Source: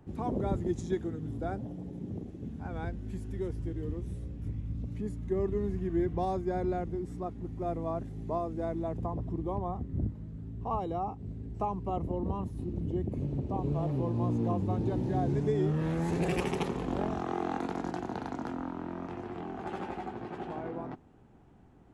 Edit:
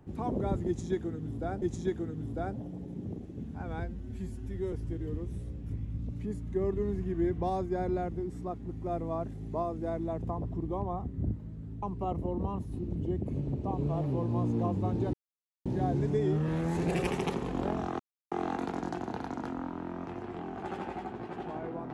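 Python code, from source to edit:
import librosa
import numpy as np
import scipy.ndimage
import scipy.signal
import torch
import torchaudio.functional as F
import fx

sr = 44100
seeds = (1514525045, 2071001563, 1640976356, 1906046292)

y = fx.edit(x, sr, fx.repeat(start_s=0.67, length_s=0.95, count=2),
    fx.stretch_span(start_s=2.89, length_s=0.59, factor=1.5),
    fx.cut(start_s=10.58, length_s=1.1),
    fx.insert_silence(at_s=14.99, length_s=0.52),
    fx.insert_silence(at_s=17.33, length_s=0.32), tone=tone)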